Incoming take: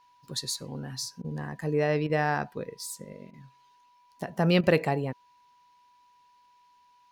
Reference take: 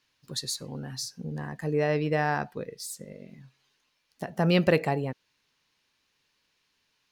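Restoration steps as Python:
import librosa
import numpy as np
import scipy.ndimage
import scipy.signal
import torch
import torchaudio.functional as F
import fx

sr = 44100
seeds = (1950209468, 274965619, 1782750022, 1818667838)

y = fx.notch(x, sr, hz=980.0, q=30.0)
y = fx.fix_interpolate(y, sr, at_s=(1.22, 2.07, 3.31, 4.61), length_ms=24.0)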